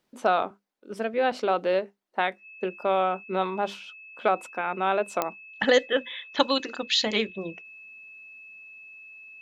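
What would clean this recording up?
click removal
notch filter 2,600 Hz, Q 30

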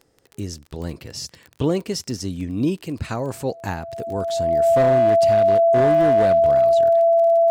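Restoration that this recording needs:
clipped peaks rebuilt −11.5 dBFS
click removal
notch filter 670 Hz, Q 30

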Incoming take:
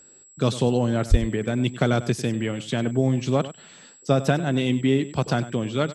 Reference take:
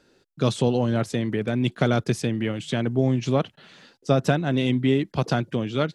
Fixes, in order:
notch filter 7,700 Hz, Q 30
0:01.10–0:01.22: high-pass filter 140 Hz 24 dB per octave
echo removal 98 ms −15 dB

